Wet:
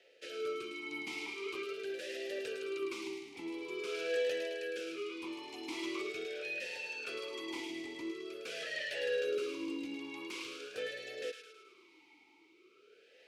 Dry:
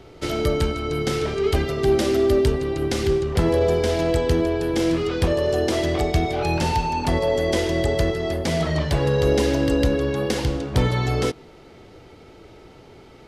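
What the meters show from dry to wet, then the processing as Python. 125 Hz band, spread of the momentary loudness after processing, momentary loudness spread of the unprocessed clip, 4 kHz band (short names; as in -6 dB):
under -40 dB, 8 LU, 5 LU, -13.0 dB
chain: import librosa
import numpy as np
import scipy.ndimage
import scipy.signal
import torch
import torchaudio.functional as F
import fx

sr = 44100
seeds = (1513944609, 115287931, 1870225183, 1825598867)

p1 = np.diff(x, prepend=0.0)
p2 = 10.0 ** (-31.0 / 20.0) * (np.abs((p1 / 10.0 ** (-31.0 / 20.0) + 3.0) % 4.0 - 2.0) - 1.0)
p3 = fx.rotary(p2, sr, hz=0.65)
p4 = p3 + fx.echo_wet_highpass(p3, sr, ms=107, feedback_pct=56, hz=1600.0, wet_db=-5, dry=0)
p5 = fx.vowel_sweep(p4, sr, vowels='e-u', hz=0.45)
y = p5 * librosa.db_to_amplitude(16.0)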